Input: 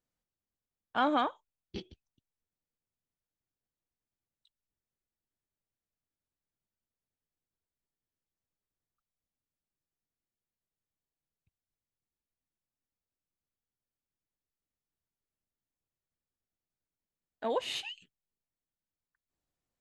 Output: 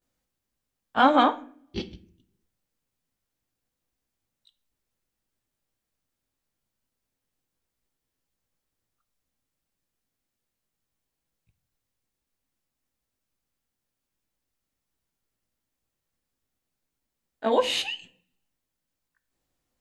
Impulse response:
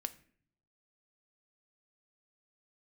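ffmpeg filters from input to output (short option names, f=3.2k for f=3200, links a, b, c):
-filter_complex "[0:a]asplit=2[a][b];[1:a]atrim=start_sample=2205,adelay=18[c];[b][c]afir=irnorm=-1:irlink=0,volume=10.5dB[d];[a][d]amix=inputs=2:normalize=0"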